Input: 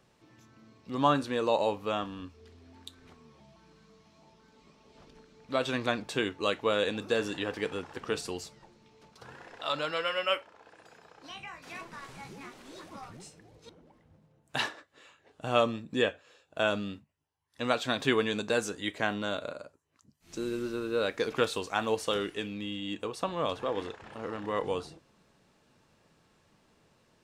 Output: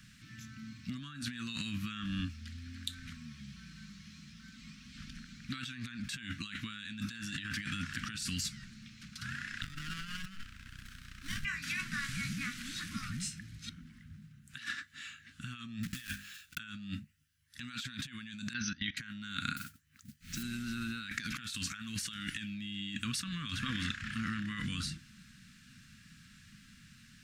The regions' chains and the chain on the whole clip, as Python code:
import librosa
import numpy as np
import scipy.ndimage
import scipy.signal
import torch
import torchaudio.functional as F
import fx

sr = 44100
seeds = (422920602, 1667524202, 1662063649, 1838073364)

y = fx.chain(x, sr, fx.tilt_eq(slope=1.5),
    fx.running_max(window=17), at=(9.62, 11.45))
y = fx.chain(y, sr, fx.block_float(bits=3),
    fx.peak_eq(hz=240.0, db=-10.0, octaves=0.26),
    fx.hum_notches(base_hz=50, count=5), at=(15.83, 16.59))
y = fx.chain(y, sr, fx.brickwall_lowpass(high_hz=6300.0),
    fx.level_steps(step_db=21), at=(18.53, 18.97))
y = fx.chain(y, sr, fx.lowpass(hz=3300.0, slope=6),
    fx.notch(hz=630.0, q=5.3),
    fx.mod_noise(seeds[0], snr_db=13), at=(19.56, 20.43))
y = scipy.signal.sosfilt(scipy.signal.ellip(3, 1.0, 40, [230.0, 1500.0], 'bandstop', fs=sr, output='sos'), y)
y = fx.over_compress(y, sr, threshold_db=-46.0, ratio=-1.0)
y = y * 10.0 ** (5.5 / 20.0)